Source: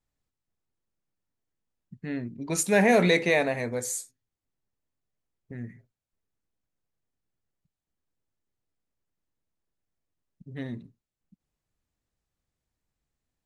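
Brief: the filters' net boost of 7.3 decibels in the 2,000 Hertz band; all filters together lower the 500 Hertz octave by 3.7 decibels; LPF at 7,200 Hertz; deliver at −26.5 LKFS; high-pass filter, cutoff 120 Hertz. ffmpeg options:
ffmpeg -i in.wav -af "highpass=120,lowpass=7200,equalizer=frequency=500:width_type=o:gain=-5,equalizer=frequency=2000:width_type=o:gain=8.5,volume=-5dB" out.wav

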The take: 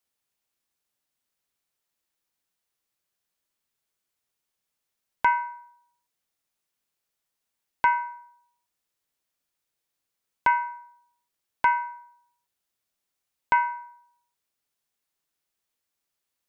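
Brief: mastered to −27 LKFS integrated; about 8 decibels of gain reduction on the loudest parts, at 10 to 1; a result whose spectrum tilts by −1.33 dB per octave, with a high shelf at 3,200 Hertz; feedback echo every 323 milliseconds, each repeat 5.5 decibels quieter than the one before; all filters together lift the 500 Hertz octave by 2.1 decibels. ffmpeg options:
ffmpeg -i in.wav -af "equalizer=frequency=500:width_type=o:gain=3,highshelf=frequency=3200:gain=-7.5,acompressor=threshold=-24dB:ratio=10,aecho=1:1:323|646|969|1292|1615|1938|2261:0.531|0.281|0.149|0.079|0.0419|0.0222|0.0118,volume=7.5dB" out.wav

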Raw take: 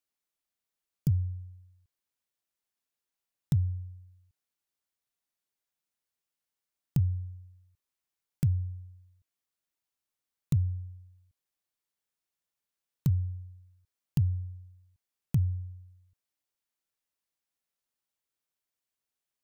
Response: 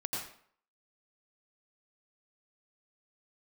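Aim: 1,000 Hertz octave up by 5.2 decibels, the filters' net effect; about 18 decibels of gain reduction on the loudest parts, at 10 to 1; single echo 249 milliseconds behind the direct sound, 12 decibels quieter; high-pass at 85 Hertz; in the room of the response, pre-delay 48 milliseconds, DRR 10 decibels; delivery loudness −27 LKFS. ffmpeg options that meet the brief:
-filter_complex "[0:a]highpass=85,equalizer=frequency=1000:width_type=o:gain=6.5,acompressor=threshold=-41dB:ratio=10,aecho=1:1:249:0.251,asplit=2[link_01][link_02];[1:a]atrim=start_sample=2205,adelay=48[link_03];[link_02][link_03]afir=irnorm=-1:irlink=0,volume=-13dB[link_04];[link_01][link_04]amix=inputs=2:normalize=0,volume=22dB"

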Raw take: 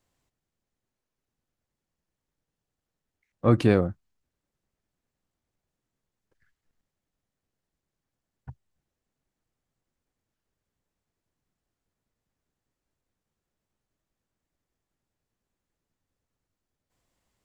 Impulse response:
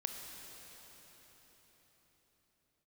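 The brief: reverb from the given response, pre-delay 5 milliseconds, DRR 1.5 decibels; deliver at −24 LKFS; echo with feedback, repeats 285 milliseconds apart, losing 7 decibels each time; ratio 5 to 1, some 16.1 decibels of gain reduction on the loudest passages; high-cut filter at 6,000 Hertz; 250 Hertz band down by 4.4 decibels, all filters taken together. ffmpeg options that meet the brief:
-filter_complex "[0:a]lowpass=6000,equalizer=frequency=250:width_type=o:gain=-6,acompressor=threshold=-35dB:ratio=5,aecho=1:1:285|570|855|1140|1425:0.447|0.201|0.0905|0.0407|0.0183,asplit=2[link_01][link_02];[1:a]atrim=start_sample=2205,adelay=5[link_03];[link_02][link_03]afir=irnorm=-1:irlink=0,volume=-2dB[link_04];[link_01][link_04]amix=inputs=2:normalize=0,volume=19.5dB"

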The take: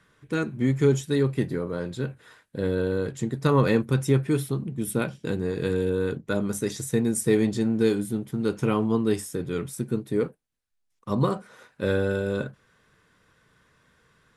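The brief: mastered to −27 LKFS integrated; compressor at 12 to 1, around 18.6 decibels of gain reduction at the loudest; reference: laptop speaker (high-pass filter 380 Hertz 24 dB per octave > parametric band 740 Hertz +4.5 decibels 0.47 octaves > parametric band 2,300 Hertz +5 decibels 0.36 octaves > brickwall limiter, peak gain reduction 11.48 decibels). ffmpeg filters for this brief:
ffmpeg -i in.wav -af "acompressor=threshold=-35dB:ratio=12,highpass=frequency=380:width=0.5412,highpass=frequency=380:width=1.3066,equalizer=frequency=740:width_type=o:width=0.47:gain=4.5,equalizer=frequency=2300:width_type=o:width=0.36:gain=5,volume=21dB,alimiter=limit=-17dB:level=0:latency=1" out.wav

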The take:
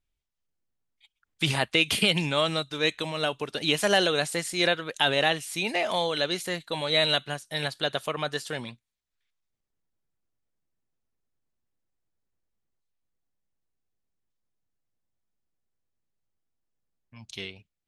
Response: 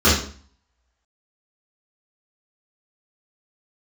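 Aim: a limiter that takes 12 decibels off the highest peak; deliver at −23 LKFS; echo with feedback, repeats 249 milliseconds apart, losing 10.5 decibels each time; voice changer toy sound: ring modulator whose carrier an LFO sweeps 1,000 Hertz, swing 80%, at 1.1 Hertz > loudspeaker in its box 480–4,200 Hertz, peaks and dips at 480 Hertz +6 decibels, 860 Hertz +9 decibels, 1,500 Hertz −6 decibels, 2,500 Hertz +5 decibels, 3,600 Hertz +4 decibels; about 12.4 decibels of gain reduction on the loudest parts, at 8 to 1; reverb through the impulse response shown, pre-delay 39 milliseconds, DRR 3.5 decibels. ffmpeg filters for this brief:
-filter_complex "[0:a]acompressor=threshold=-31dB:ratio=8,alimiter=level_in=2.5dB:limit=-24dB:level=0:latency=1,volume=-2.5dB,aecho=1:1:249|498|747:0.299|0.0896|0.0269,asplit=2[link_01][link_02];[1:a]atrim=start_sample=2205,adelay=39[link_03];[link_02][link_03]afir=irnorm=-1:irlink=0,volume=-26.5dB[link_04];[link_01][link_04]amix=inputs=2:normalize=0,aeval=exprs='val(0)*sin(2*PI*1000*n/s+1000*0.8/1.1*sin(2*PI*1.1*n/s))':channel_layout=same,highpass=480,equalizer=frequency=480:width_type=q:width=4:gain=6,equalizer=frequency=860:width_type=q:width=4:gain=9,equalizer=frequency=1500:width_type=q:width=4:gain=-6,equalizer=frequency=2500:width_type=q:width=4:gain=5,equalizer=frequency=3600:width_type=q:width=4:gain=4,lowpass=frequency=4200:width=0.5412,lowpass=frequency=4200:width=1.3066,volume=14.5dB"

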